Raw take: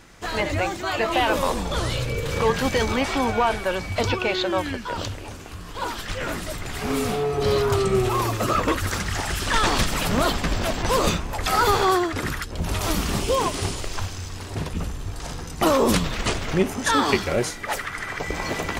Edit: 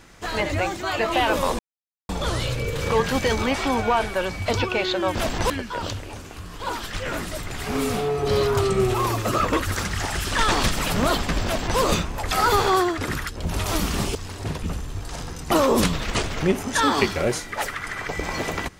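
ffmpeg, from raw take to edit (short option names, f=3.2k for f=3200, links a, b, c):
-filter_complex "[0:a]asplit=5[a][b][c][d][e];[a]atrim=end=1.59,asetpts=PTS-STARTPTS,afade=t=out:st=1.586:d=0.004:c=hsin,apad=pad_dur=0.5[f];[b]atrim=start=1.59:end=4.652,asetpts=PTS-STARTPTS,afade=t=in:d=0.004:c=hsin[g];[c]atrim=start=10.588:end=10.942[h];[d]atrim=start=4.648:end=13.302[i];[e]atrim=start=14.258[j];[f][g]concat=n=2:v=0:a=1[k];[k][h]acrossfade=d=0.004:c1=hsin:c2=hsin[l];[l][i]acrossfade=d=0.004:c1=hsin:c2=hsin[m];[m][j]acrossfade=d=0.004:c1=hsin:c2=hsin"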